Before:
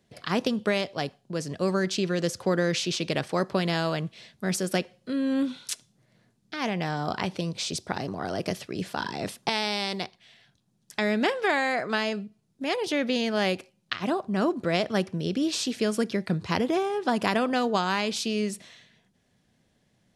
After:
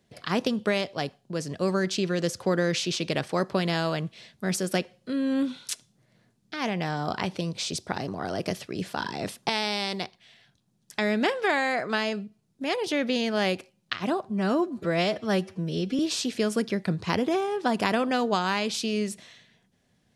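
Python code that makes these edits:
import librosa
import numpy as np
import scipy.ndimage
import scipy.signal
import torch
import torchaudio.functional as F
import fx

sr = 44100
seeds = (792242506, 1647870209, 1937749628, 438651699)

y = fx.edit(x, sr, fx.stretch_span(start_s=14.25, length_s=1.16, factor=1.5), tone=tone)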